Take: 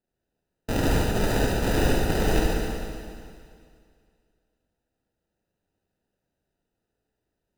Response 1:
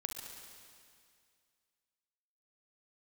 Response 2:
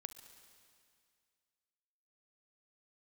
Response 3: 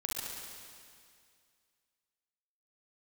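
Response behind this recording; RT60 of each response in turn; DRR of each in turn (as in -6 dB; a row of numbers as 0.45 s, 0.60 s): 3; 2.2 s, 2.2 s, 2.2 s; 2.5 dB, 9.5 dB, -3.5 dB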